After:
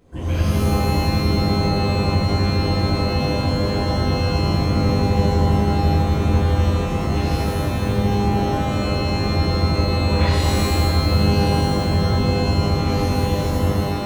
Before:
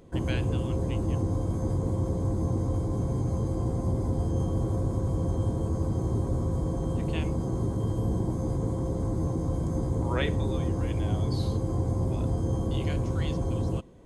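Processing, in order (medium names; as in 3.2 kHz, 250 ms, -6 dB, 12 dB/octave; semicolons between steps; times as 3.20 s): peaking EQ 85 Hz +8 dB 0.62 oct; hum notches 50/100/150/200/250 Hz; pitch-shifted reverb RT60 1.4 s, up +12 st, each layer -2 dB, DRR -8 dB; trim -5.5 dB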